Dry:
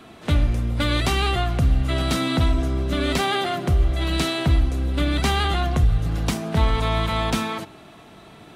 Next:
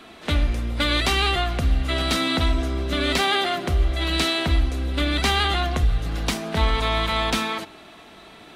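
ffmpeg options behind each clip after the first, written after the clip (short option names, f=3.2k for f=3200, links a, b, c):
-af "equalizer=f=125:t=o:w=1:g=-10,equalizer=f=2k:t=o:w=1:g=3,equalizer=f=4k:t=o:w=1:g=4"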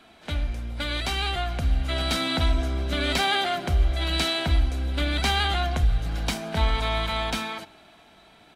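-af "aecho=1:1:1.3:0.31,dynaudnorm=f=250:g=13:m=8dB,volume=-8.5dB"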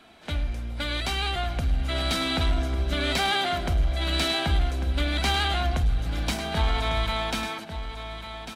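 -af "asoftclip=type=tanh:threshold=-15.5dB,aecho=1:1:1147:0.316"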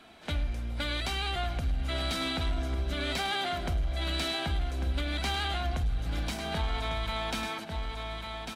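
-af "alimiter=limit=-22dB:level=0:latency=1:release=358,volume=-1dB"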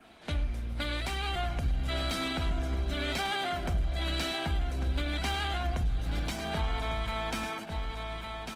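-af "adynamicequalizer=threshold=0.00282:dfrequency=3900:dqfactor=2.7:tfrequency=3900:tqfactor=2.7:attack=5:release=100:ratio=0.375:range=3:mode=cutabove:tftype=bell" -ar 48000 -c:a libopus -b:a 20k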